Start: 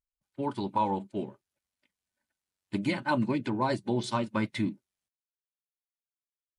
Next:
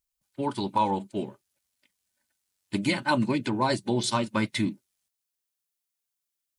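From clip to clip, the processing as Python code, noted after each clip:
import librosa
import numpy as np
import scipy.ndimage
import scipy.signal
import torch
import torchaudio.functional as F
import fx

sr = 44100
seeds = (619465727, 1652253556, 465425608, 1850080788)

y = fx.high_shelf(x, sr, hz=3500.0, db=10.5)
y = y * 10.0 ** (2.5 / 20.0)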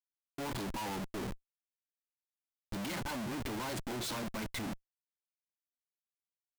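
y = fx.schmitt(x, sr, flips_db=-41.5)
y = y * 10.0 ** (-7.5 / 20.0)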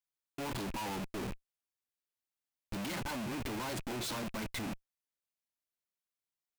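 y = fx.rattle_buzz(x, sr, strikes_db=-51.0, level_db=-42.0)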